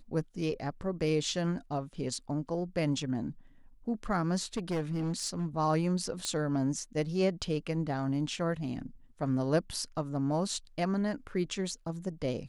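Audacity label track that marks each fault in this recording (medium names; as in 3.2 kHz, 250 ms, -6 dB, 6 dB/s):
4.570000	5.460000	clipped -28 dBFS
6.250000	6.250000	pop -18 dBFS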